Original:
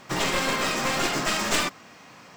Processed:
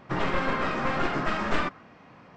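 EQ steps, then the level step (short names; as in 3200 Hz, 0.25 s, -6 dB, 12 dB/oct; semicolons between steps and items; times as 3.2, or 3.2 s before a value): dynamic EQ 1400 Hz, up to +5 dB, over -41 dBFS, Q 1.5; tape spacing loss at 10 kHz 34 dB; low shelf 81 Hz +7 dB; 0.0 dB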